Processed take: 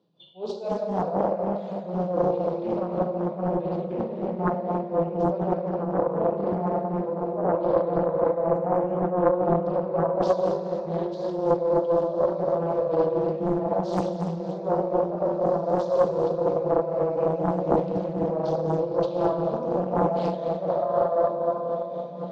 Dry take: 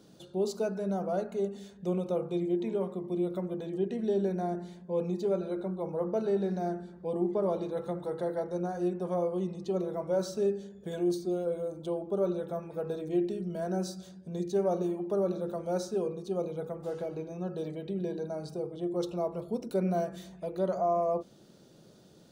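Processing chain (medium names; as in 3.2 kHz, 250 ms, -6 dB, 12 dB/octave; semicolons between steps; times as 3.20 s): reverse; compression 6:1, threshold -36 dBFS, peak gain reduction 12 dB; reverse; spectral noise reduction 20 dB; cabinet simulation 120–4200 Hz, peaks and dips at 160 Hz +7 dB, 270 Hz -7 dB, 530 Hz +5 dB, 990 Hz +8 dB, 1.5 kHz -9 dB, 2.2 kHz -4 dB; plate-style reverb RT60 4.1 s, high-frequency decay 0.55×, DRR -5 dB; dynamic bell 590 Hz, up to +3 dB, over -37 dBFS, Q 1.3; on a send: echo that smears into a reverb 1870 ms, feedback 49%, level -12 dB; on the sum: tremolo 4 Hz, depth 48%; loudspeaker Doppler distortion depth 0.84 ms; trim +7 dB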